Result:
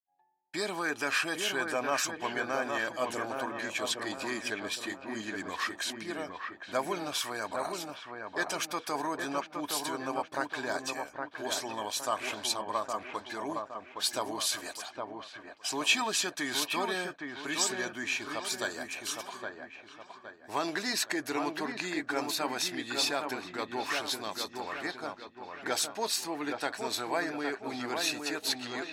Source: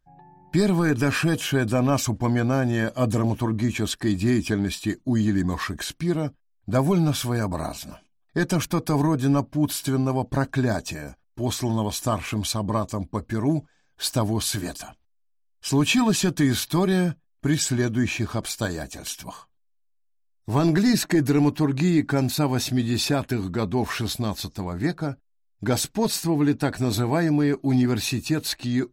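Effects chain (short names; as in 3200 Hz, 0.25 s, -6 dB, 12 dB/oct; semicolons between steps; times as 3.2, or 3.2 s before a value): weighting filter A; dark delay 0.815 s, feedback 43%, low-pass 2100 Hz, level -4.5 dB; expander -41 dBFS; bell 150 Hz -13 dB 1.8 oct; gain -3.5 dB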